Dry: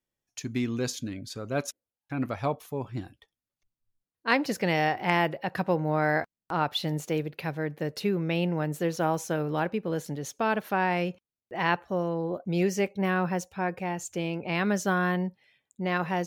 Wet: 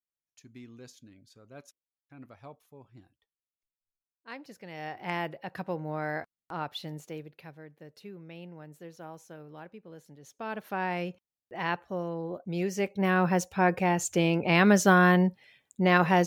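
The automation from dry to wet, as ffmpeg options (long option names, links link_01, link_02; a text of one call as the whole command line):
ffmpeg -i in.wav -af "volume=16dB,afade=type=in:start_time=4.7:duration=0.41:silence=0.281838,afade=type=out:start_time=6.61:duration=1.07:silence=0.316228,afade=type=in:start_time=10.19:duration=0.67:silence=0.223872,afade=type=in:start_time=12.69:duration=1.01:silence=0.281838" out.wav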